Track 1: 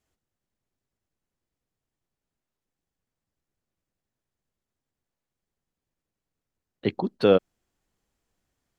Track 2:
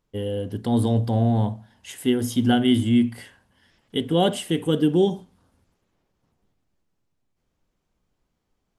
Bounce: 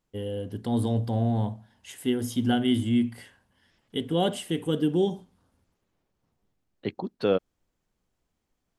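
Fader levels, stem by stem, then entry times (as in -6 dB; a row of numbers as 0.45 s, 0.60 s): -5.5 dB, -5.0 dB; 0.00 s, 0.00 s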